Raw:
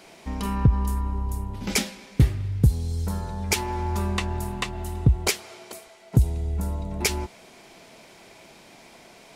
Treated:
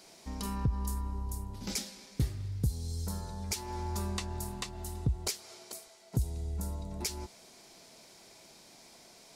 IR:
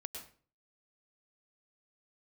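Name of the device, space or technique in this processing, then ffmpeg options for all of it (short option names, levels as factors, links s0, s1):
over-bright horn tweeter: -af "highshelf=f=3600:t=q:w=1.5:g=7,alimiter=limit=0.266:level=0:latency=1:release=223,volume=0.355"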